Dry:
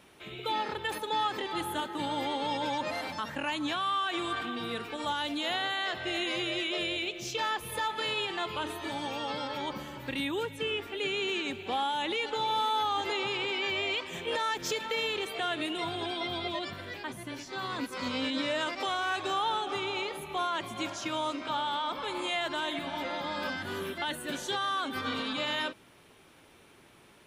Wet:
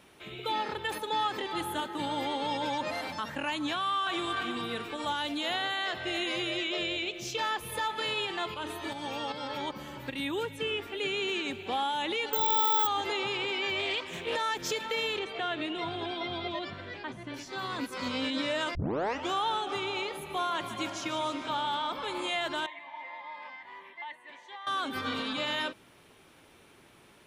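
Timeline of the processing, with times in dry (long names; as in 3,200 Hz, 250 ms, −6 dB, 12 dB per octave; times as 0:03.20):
0:03.74–0:04.29: delay throw 320 ms, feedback 40%, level −6.5 dB
0:06.57–0:07.13: Butterworth low-pass 8,100 Hz
0:08.54–0:10.33: fake sidechain pumping 154 BPM, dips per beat 1, −7 dB, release 276 ms
0:12.33–0:12.87: bad sample-rate conversion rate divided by 2×, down filtered, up zero stuff
0:13.79–0:14.35: highs frequency-modulated by the lows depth 0.16 ms
0:15.19–0:17.34: high-frequency loss of the air 110 metres
0:18.75: tape start 0.57 s
0:20.11–0:21.88: repeating echo 149 ms, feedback 57%, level −12 dB
0:22.66–0:24.67: pair of resonant band-passes 1,400 Hz, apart 0.99 octaves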